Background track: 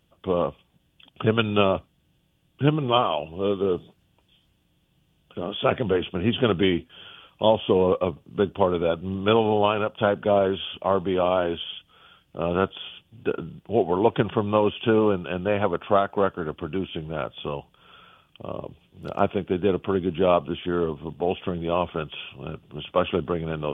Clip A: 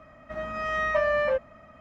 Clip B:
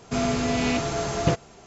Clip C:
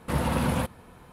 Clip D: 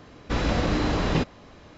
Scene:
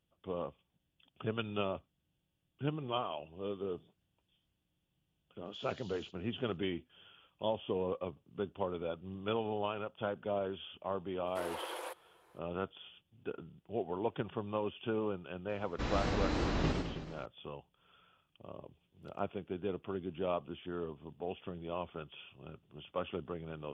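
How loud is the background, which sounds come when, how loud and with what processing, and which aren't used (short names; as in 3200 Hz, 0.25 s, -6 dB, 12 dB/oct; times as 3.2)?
background track -15.5 dB
5.45 add C -14 dB + brick-wall FIR band-pass 2800–7300 Hz
11.27 add C -12 dB + brick-wall FIR high-pass 310 Hz
15.49 add D -11 dB + warbling echo 0.107 s, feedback 58%, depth 204 cents, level -4.5 dB
not used: A, B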